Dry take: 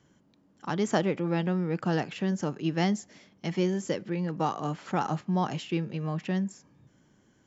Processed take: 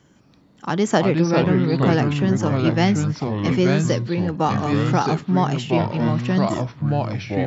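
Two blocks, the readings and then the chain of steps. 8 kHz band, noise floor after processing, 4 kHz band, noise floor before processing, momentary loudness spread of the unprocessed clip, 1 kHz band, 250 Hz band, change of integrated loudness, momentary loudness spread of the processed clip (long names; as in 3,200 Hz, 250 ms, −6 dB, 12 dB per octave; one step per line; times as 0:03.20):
can't be measured, −54 dBFS, +9.5 dB, −65 dBFS, 7 LU, +9.5 dB, +10.0 dB, +10.0 dB, 6 LU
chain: delay with pitch and tempo change per echo 159 ms, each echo −4 semitones, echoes 2
level +8 dB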